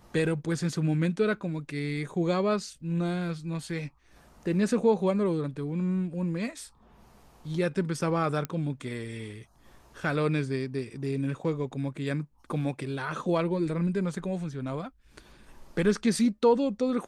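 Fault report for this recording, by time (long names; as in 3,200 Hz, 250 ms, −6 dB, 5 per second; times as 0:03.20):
0:08.45: click −17 dBFS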